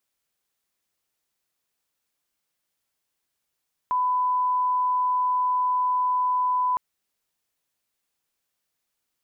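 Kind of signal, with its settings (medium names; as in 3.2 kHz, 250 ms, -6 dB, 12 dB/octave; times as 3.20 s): line-up tone -20 dBFS 2.86 s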